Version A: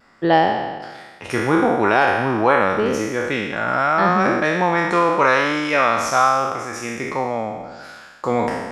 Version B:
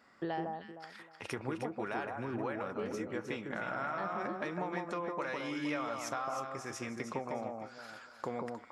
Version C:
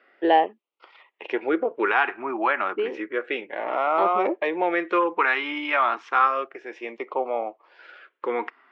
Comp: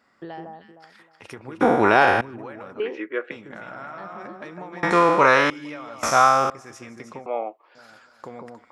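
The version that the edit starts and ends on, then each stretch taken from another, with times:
B
1.61–2.21 from A
2.8–3.31 from C
4.83–5.5 from A
6.03–6.5 from A
7.26–7.75 from C

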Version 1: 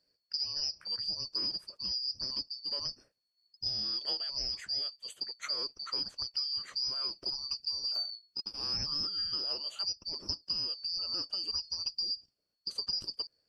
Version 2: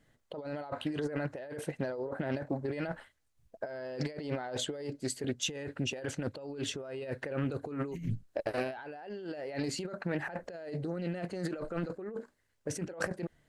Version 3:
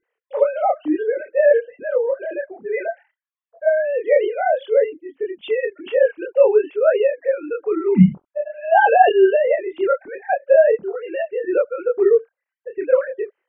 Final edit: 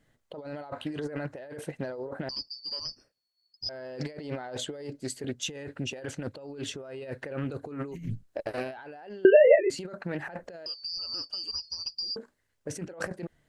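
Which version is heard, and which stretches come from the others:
2
2.29–3.69 from 1
9.25–9.7 from 3
10.66–12.16 from 1

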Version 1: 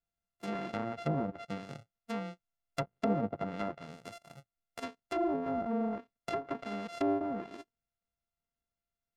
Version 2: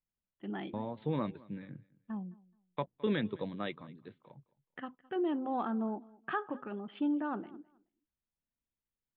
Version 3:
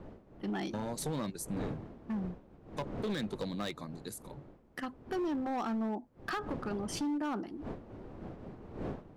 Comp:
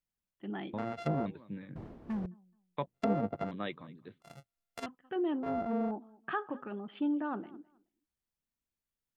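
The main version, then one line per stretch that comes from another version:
2
0.78–1.26 from 1
1.76–2.26 from 3
2.94–3.51 from 1
4.22–4.86 from 1
5.43–5.91 from 1

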